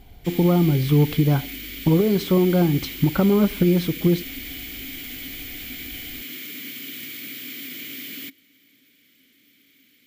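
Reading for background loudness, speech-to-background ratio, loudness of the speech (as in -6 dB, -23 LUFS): -33.0 LUFS, 13.0 dB, -20.0 LUFS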